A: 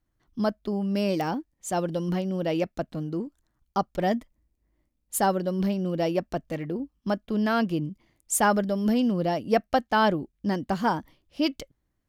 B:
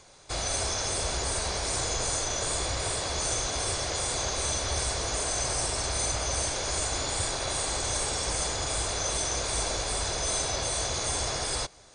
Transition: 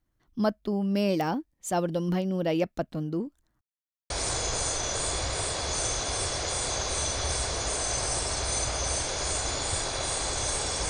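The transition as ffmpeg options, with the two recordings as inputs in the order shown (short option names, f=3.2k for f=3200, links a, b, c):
-filter_complex "[0:a]apad=whole_dur=10.89,atrim=end=10.89,asplit=2[a][b];[a]atrim=end=3.61,asetpts=PTS-STARTPTS,afade=t=out:st=3.606:d=0.004:c=hsin[c];[b]atrim=start=3.61:end=4.1,asetpts=PTS-STARTPTS,volume=0[d];[1:a]atrim=start=1.57:end=8.36,asetpts=PTS-STARTPTS,afade=t=in:d=0.004:c=hsin[e];[c][d][e]concat=n=3:v=0:a=1"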